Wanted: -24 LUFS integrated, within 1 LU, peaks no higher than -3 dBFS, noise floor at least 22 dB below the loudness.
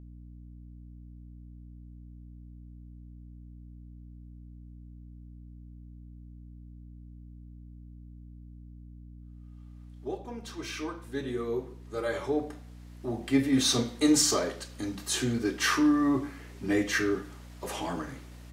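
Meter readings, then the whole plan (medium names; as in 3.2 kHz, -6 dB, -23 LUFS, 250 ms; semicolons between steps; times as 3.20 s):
hum 60 Hz; highest harmonic 300 Hz; hum level -42 dBFS; loudness -29.5 LUFS; peak level -10.5 dBFS; loudness target -24.0 LUFS
-> hum notches 60/120/180/240/300 Hz; trim +5.5 dB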